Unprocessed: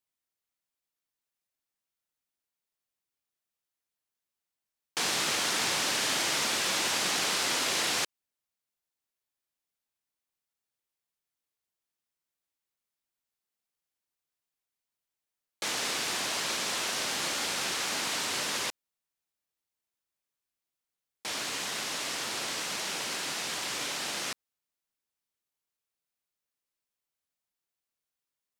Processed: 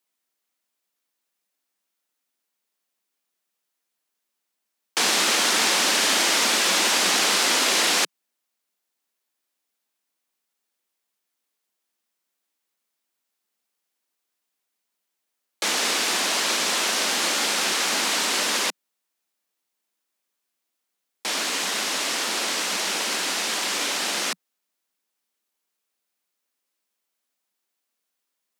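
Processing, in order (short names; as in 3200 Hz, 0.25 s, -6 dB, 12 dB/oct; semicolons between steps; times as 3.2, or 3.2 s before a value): steep high-pass 180 Hz 72 dB/oct; gain +8.5 dB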